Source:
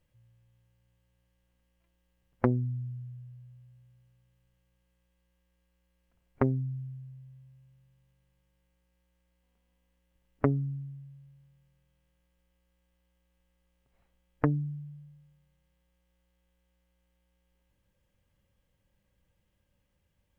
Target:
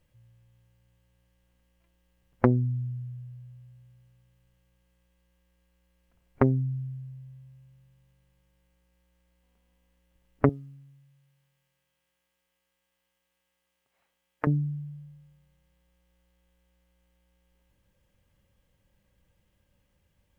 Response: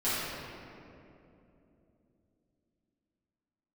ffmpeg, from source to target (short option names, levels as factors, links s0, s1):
-filter_complex "[0:a]asettb=1/sr,asplit=3[s0][s1][s2];[s0]atrim=end=10.494[s3];[s1]atrim=start=10.49:end=14.47,asetpts=PTS-STARTPTS,afade=t=in:d=0.004:c=qsin,afade=t=out:st=3.976:d=0.004:c=qsin,highpass=f=970:p=1[s4];[s2]atrim=start=14.466[s5];[s3][s4]acrossfade=d=0.004:c1=hsin:c2=qsin[s6];[s6][s5]acrossfade=d=0.004:c1=qsin:c2=hsin,volume=1.68"